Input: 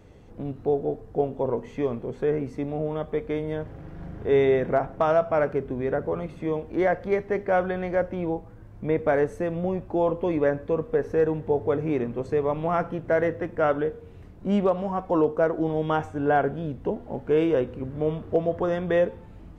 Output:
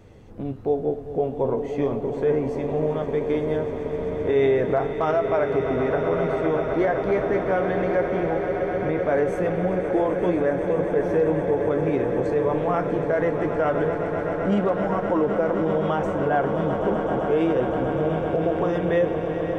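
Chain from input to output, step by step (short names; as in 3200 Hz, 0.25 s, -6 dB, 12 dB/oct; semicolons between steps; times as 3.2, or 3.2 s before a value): swelling echo 0.129 s, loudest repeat 8, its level -14 dB; limiter -15.5 dBFS, peak gain reduction 6.5 dB; flange 0.2 Hz, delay 8.5 ms, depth 7.6 ms, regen -59%; gain +6.5 dB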